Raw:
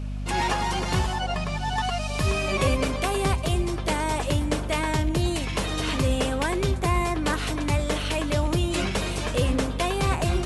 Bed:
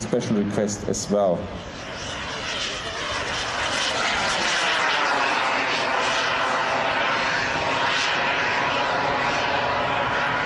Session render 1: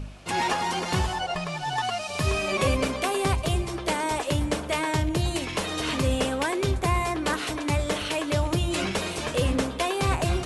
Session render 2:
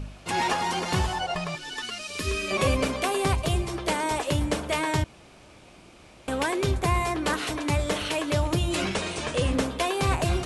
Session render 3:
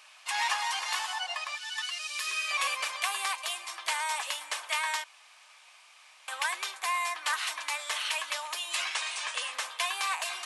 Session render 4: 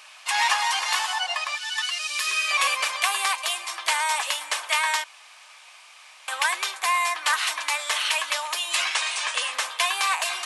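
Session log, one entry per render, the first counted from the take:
de-hum 50 Hz, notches 7
1.55–2.51 fixed phaser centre 320 Hz, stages 4; 5.04–6.28 room tone; 8.94–9.53 Chebyshev low-pass 10000 Hz, order 8
HPF 1000 Hz 24 dB/oct; notch 1400 Hz, Q 11
gain +7.5 dB

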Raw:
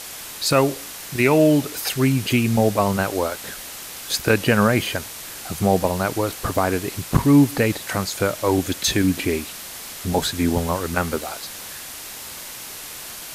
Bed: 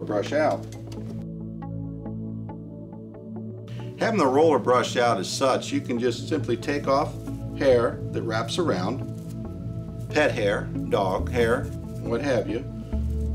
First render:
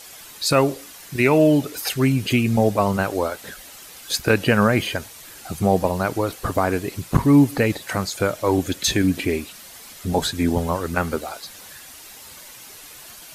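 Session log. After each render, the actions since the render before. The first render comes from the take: denoiser 9 dB, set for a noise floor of -36 dBFS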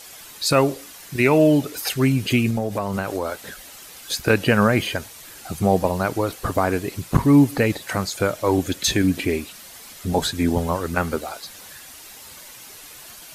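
2.5–4.26 compressor, threshold -19 dBFS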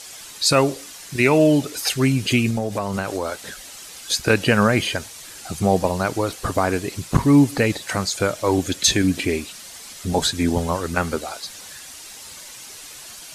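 LPF 8100 Hz 12 dB/oct; high shelf 4800 Hz +10 dB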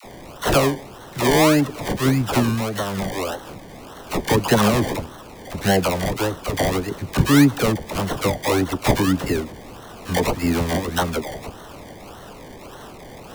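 decimation with a swept rate 26×, swing 60% 1.7 Hz; dispersion lows, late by 43 ms, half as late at 660 Hz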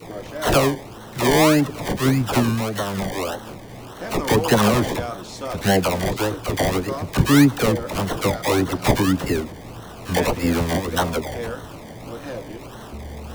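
add bed -9 dB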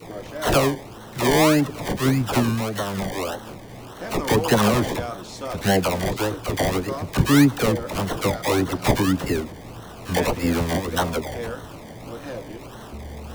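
gain -1.5 dB

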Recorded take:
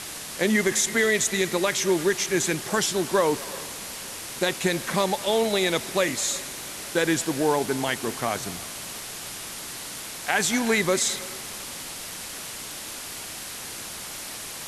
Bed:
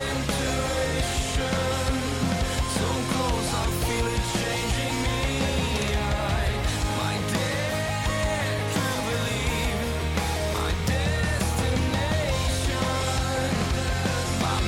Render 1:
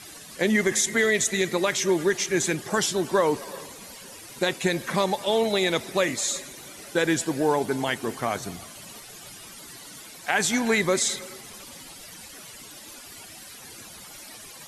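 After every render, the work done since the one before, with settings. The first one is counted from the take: denoiser 13 dB, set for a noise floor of -37 dBFS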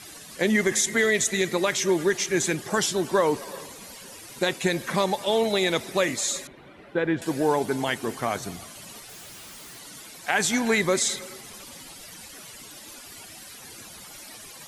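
6.47–7.22 air absorption 490 m; 9.09–9.78 Schmitt trigger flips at -59.5 dBFS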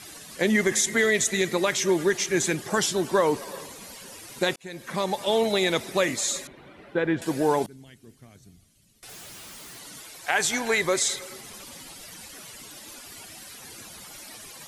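4.56–5.25 fade in; 7.66–9.03 passive tone stack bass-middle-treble 10-0-1; 10.01–11.32 bell 210 Hz -10.5 dB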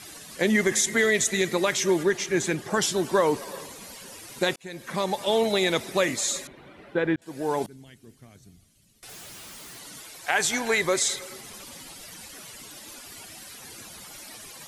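2.03–2.82 high shelf 4000 Hz -6 dB; 7.16–7.73 fade in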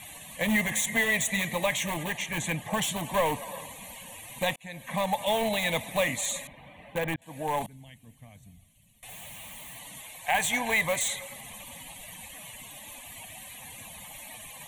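in parallel at -9 dB: wrapped overs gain 18 dB; on the sum: fixed phaser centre 1400 Hz, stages 6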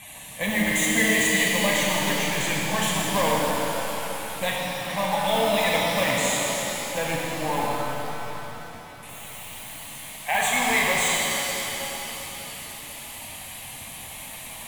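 shimmer reverb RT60 3.8 s, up +7 st, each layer -8 dB, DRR -4 dB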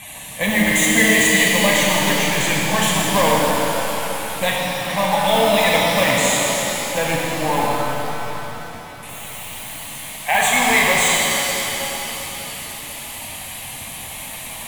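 gain +6.5 dB

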